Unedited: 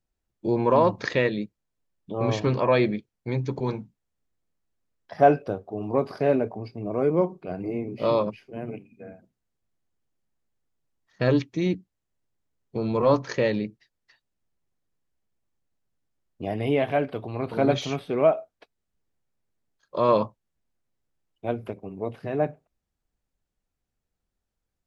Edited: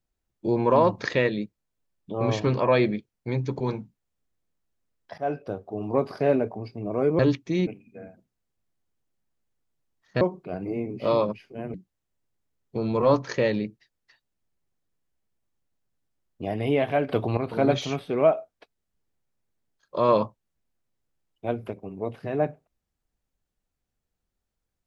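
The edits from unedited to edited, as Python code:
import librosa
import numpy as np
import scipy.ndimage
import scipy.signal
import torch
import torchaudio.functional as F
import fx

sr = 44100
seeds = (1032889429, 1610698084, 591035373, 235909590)

y = fx.edit(x, sr, fx.fade_in_from(start_s=5.18, length_s=0.49, floor_db=-18.5),
    fx.swap(start_s=7.19, length_s=1.53, other_s=11.26, other_length_s=0.48),
    fx.clip_gain(start_s=17.09, length_s=0.28, db=8.0), tone=tone)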